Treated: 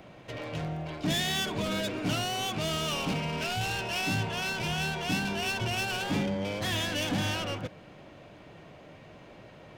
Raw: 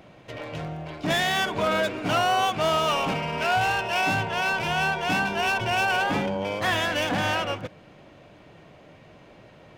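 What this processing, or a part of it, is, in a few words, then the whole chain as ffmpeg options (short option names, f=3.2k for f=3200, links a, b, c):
one-band saturation: -filter_complex "[0:a]acrossover=split=370|2900[a][b][c];[b]asoftclip=type=tanh:threshold=-37dB[d];[a][d][c]amix=inputs=3:normalize=0"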